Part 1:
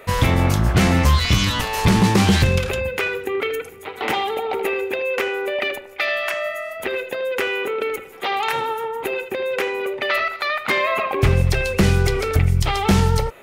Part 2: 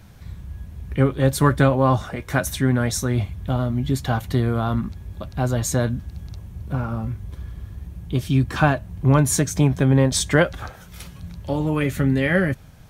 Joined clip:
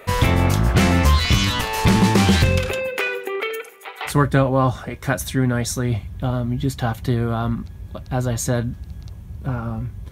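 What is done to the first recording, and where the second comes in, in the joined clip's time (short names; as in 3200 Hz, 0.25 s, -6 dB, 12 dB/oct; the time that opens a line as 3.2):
part 1
2.72–4.13 HPF 200 Hz -> 910 Hz
4.09 switch to part 2 from 1.35 s, crossfade 0.08 s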